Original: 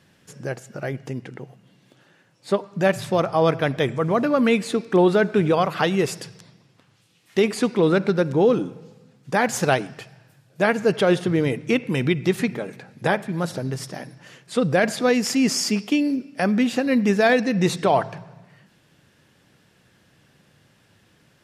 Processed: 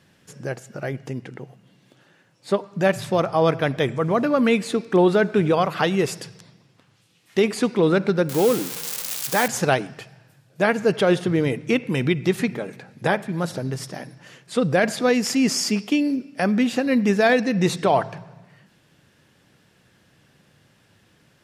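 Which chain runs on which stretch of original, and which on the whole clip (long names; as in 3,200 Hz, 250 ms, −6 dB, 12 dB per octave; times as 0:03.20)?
0:08.29–0:09.48: spike at every zero crossing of −14.5 dBFS + low-shelf EQ 230 Hz −5.5 dB
whole clip: no processing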